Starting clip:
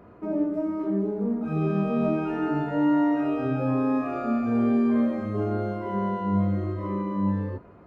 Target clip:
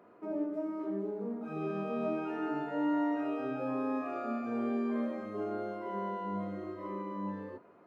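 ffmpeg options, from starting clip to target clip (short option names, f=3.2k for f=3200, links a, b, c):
-af "highpass=290,volume=-6.5dB"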